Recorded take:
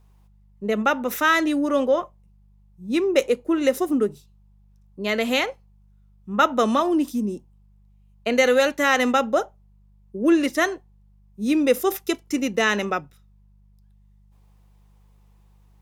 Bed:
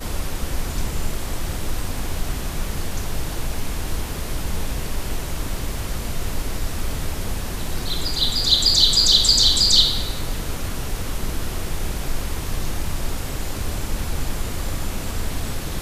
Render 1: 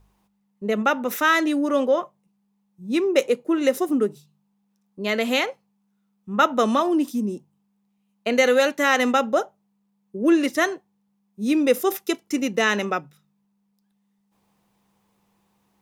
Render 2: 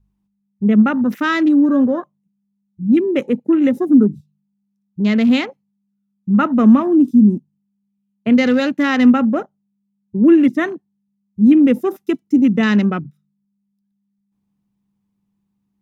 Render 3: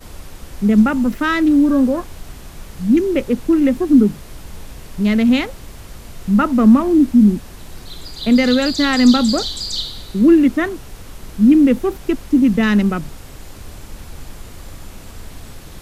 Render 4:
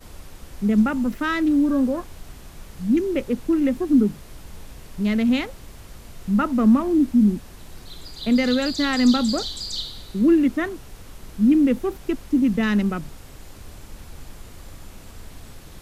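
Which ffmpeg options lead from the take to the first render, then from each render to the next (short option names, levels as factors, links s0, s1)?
-af "bandreject=f=50:t=h:w=4,bandreject=f=100:t=h:w=4,bandreject=f=150:t=h:w=4"
-af "afwtdn=0.0224,lowshelf=f=340:t=q:w=1.5:g=13"
-filter_complex "[1:a]volume=0.355[s0];[0:a][s0]amix=inputs=2:normalize=0"
-af "volume=0.501"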